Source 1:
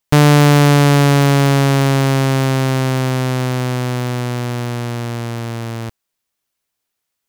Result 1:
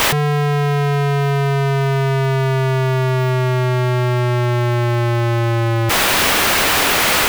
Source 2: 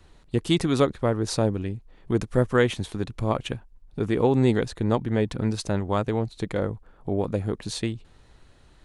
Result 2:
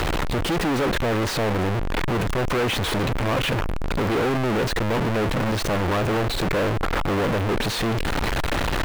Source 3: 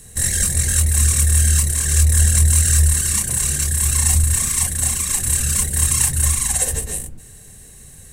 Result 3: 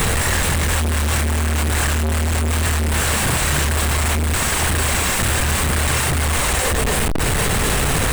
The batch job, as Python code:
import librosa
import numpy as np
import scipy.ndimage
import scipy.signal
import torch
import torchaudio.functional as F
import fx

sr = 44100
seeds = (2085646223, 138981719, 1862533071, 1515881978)

p1 = np.sign(x) * np.sqrt(np.mean(np.square(x)))
p2 = fx.bass_treble(p1, sr, bass_db=-4, treble_db=-13)
p3 = fx.over_compress(p2, sr, threshold_db=-24.0, ratio=-0.5)
y = p2 + (p3 * librosa.db_to_amplitude(0.0))